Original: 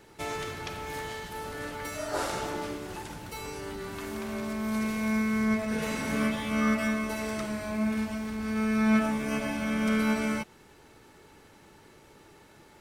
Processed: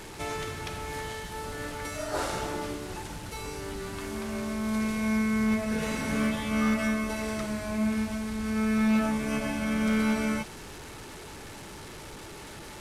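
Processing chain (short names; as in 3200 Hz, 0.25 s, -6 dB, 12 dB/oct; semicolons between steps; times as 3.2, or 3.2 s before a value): delta modulation 64 kbps, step -38 dBFS; low shelf 93 Hz +7.5 dB; overloaded stage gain 20 dB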